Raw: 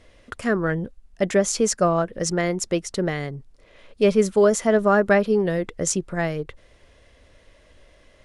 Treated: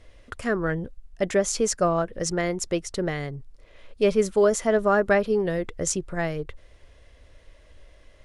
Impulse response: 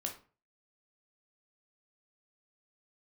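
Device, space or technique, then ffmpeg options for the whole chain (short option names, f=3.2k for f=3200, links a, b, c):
low shelf boost with a cut just above: -af "lowshelf=f=91:g=8,equalizer=f=200:t=o:w=0.68:g=-4.5,volume=-2.5dB"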